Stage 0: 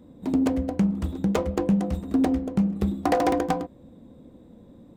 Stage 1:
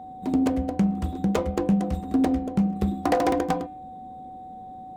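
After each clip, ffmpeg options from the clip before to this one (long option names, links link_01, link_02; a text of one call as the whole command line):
ffmpeg -i in.wav -af "bandreject=frequency=300.4:width_type=h:width=4,bandreject=frequency=600.8:width_type=h:width=4,bandreject=frequency=901.2:width_type=h:width=4,bandreject=frequency=1201.6:width_type=h:width=4,bandreject=frequency=1502:width_type=h:width=4,bandreject=frequency=1802.4:width_type=h:width=4,bandreject=frequency=2102.8:width_type=h:width=4,bandreject=frequency=2403.2:width_type=h:width=4,bandreject=frequency=2703.6:width_type=h:width=4,bandreject=frequency=3004:width_type=h:width=4,bandreject=frequency=3304.4:width_type=h:width=4,bandreject=frequency=3604.8:width_type=h:width=4,bandreject=frequency=3905.2:width_type=h:width=4,bandreject=frequency=4205.6:width_type=h:width=4,aeval=exprs='val(0)+0.0126*sin(2*PI*750*n/s)':channel_layout=same" out.wav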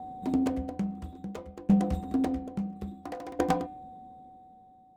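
ffmpeg -i in.wav -af "aeval=exprs='val(0)*pow(10,-20*if(lt(mod(0.59*n/s,1),2*abs(0.59)/1000),1-mod(0.59*n/s,1)/(2*abs(0.59)/1000),(mod(0.59*n/s,1)-2*abs(0.59)/1000)/(1-2*abs(0.59)/1000))/20)':channel_layout=same" out.wav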